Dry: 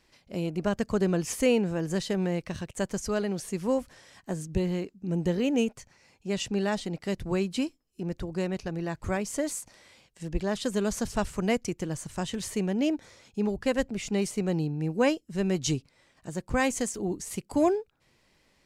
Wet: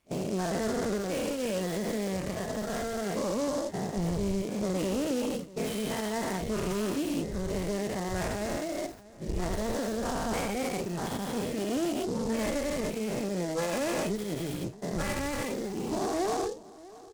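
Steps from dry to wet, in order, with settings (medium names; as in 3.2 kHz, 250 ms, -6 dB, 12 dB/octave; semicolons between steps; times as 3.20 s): every event in the spectrogram widened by 480 ms; reverb removal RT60 0.93 s; gate -34 dBFS, range -19 dB; treble shelf 7.4 kHz +11 dB; in parallel at 0 dB: compression, threshold -34 dBFS, peak gain reduction 17.5 dB; on the sum: peak limiter -13 dBFS, peak gain reduction 12.5 dB; one-sided clip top -24 dBFS, bottom -18 dBFS; flange 0.82 Hz, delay 9.8 ms, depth 2.5 ms, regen -81%; speed mistake 44.1 kHz file played as 48 kHz; distance through air 280 m; echo from a far wall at 110 m, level -19 dB; delay time shaken by noise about 5.5 kHz, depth 0.051 ms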